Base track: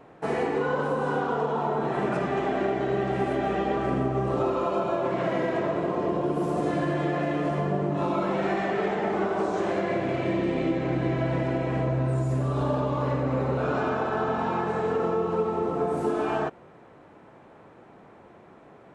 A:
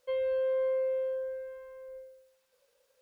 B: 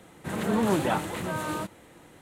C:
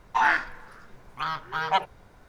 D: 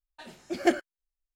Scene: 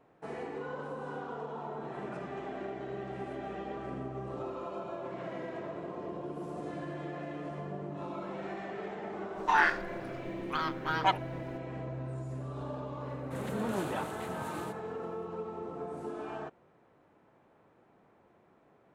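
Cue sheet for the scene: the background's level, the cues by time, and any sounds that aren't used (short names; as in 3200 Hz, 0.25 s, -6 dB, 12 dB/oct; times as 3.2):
base track -13.5 dB
9.33 add C -3.5 dB, fades 0.05 s
13.06 add B -10 dB + expander -46 dBFS
not used: A, D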